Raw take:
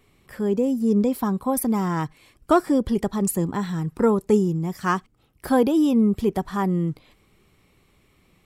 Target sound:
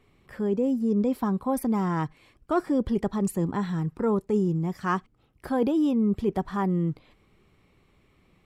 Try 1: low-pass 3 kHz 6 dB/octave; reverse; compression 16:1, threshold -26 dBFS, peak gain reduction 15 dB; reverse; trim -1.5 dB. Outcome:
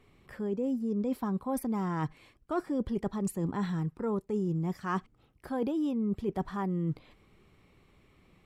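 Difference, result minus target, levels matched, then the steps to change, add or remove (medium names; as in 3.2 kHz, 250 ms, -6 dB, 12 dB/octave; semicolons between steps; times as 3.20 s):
compression: peak gain reduction +7.5 dB
change: compression 16:1, threshold -18 dBFS, peak gain reduction 7.5 dB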